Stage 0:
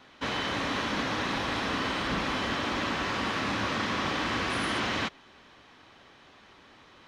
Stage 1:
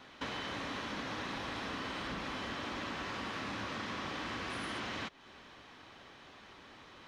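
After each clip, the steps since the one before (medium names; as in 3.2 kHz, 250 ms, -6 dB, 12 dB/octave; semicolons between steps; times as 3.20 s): compression 4:1, threshold -39 dBFS, peak gain reduction 11 dB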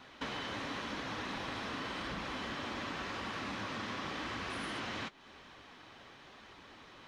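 flange 0.91 Hz, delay 0.7 ms, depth 8.8 ms, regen -56%; trim +4 dB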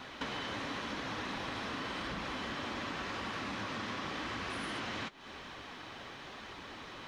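compression 2:1, threshold -50 dBFS, peak gain reduction 8 dB; trim +8 dB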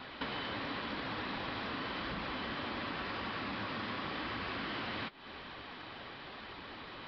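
resampled via 11.025 kHz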